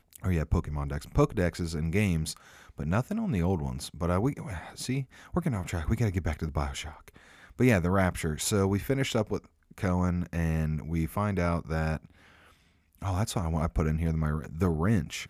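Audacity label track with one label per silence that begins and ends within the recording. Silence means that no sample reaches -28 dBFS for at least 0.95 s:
11.970000	13.050000	silence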